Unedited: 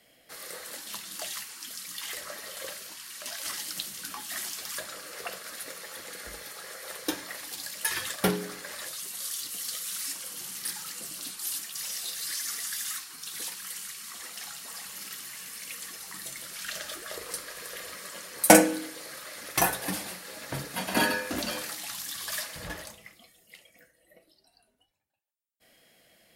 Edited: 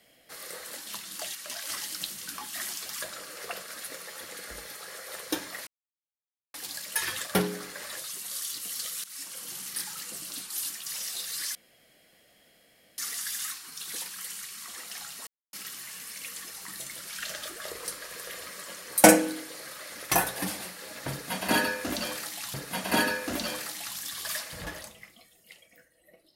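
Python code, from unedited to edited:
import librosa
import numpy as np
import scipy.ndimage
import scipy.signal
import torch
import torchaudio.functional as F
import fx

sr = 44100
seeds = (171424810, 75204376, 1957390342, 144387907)

y = fx.edit(x, sr, fx.cut(start_s=1.35, length_s=1.76),
    fx.insert_silence(at_s=7.43, length_s=0.87),
    fx.fade_in_from(start_s=9.93, length_s=0.51, curve='qsin', floor_db=-16.5),
    fx.insert_room_tone(at_s=12.44, length_s=1.43),
    fx.silence(start_s=14.73, length_s=0.26),
    fx.repeat(start_s=20.57, length_s=1.43, count=2), tone=tone)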